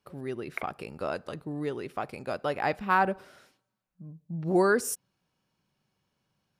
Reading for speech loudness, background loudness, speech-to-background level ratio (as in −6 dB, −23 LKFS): −30.5 LKFS, −41.5 LKFS, 11.0 dB